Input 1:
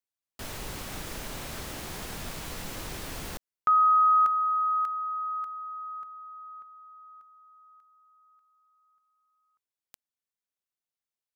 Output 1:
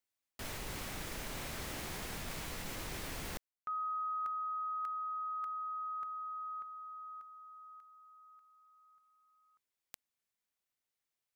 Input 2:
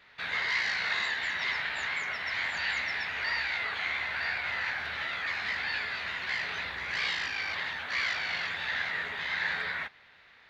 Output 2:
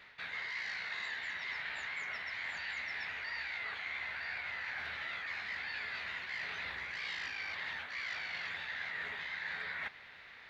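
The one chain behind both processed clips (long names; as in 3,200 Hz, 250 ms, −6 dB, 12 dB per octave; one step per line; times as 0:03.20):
parametric band 2,100 Hz +3 dB 0.55 octaves
reversed playback
downward compressor 6 to 1, threshold −41 dBFS
reversed playback
level +2 dB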